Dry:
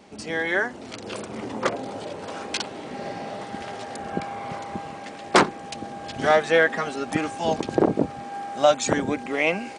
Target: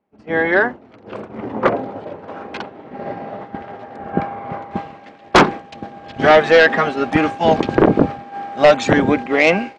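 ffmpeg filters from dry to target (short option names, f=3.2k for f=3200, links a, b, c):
-af "asetnsamples=n=441:p=0,asendcmd='4.71 lowpass f 3200',lowpass=1.7k,agate=range=-33dB:threshold=-27dB:ratio=3:detection=peak,aeval=exprs='0.631*sin(PI/2*2.24*val(0)/0.631)':c=same"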